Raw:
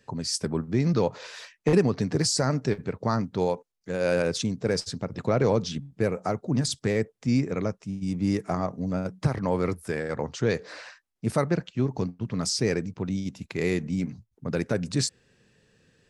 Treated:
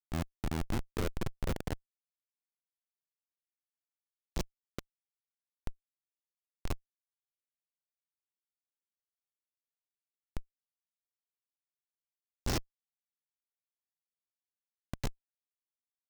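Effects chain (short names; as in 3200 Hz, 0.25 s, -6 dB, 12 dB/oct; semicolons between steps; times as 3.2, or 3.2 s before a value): low shelf 360 Hz +5.5 dB; vocal rider 2 s; diffused feedback echo 0.51 s, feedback 71%, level -11 dB; compressor 8:1, threshold -26 dBFS, peak gain reduction 14.5 dB; high shelf 2400 Hz -8.5 dB; sample leveller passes 5; band-pass sweep 300 Hz -> 6300 Hz, 0.72–4.39; Schmitt trigger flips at -21.5 dBFS; gain +5.5 dB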